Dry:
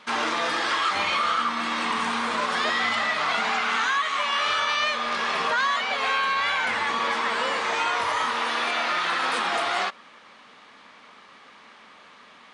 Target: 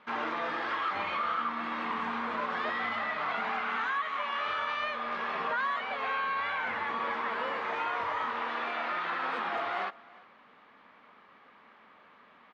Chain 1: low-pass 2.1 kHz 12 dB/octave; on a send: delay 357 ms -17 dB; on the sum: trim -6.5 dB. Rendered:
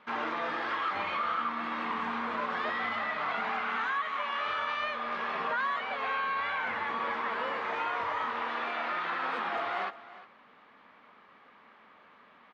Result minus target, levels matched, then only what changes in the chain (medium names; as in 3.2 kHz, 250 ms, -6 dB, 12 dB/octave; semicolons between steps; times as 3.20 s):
echo-to-direct +6 dB
change: delay 357 ms -23 dB